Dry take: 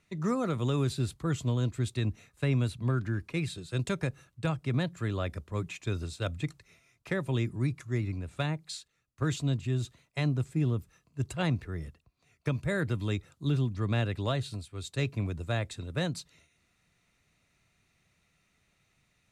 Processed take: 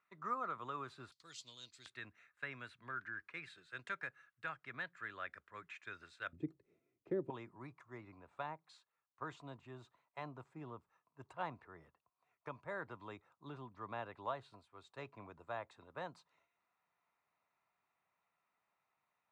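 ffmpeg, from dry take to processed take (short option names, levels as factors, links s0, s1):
-af "asetnsamples=n=441:p=0,asendcmd='1.12 bandpass f 4600;1.86 bandpass f 1600;6.33 bandpass f 350;7.3 bandpass f 960',bandpass=f=1200:t=q:w=3.1:csg=0"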